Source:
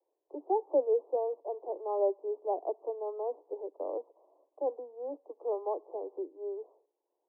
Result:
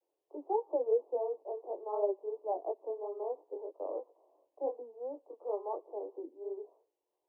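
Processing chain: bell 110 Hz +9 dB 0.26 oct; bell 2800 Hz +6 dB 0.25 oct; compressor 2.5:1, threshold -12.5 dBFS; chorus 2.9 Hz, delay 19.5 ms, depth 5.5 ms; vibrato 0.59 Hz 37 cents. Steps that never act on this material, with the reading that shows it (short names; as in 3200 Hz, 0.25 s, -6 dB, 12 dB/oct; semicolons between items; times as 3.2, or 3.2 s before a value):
bell 110 Hz: input band starts at 250 Hz; bell 2800 Hz: input band ends at 1100 Hz; compressor, threshold -12.5 dBFS: input peak -18.0 dBFS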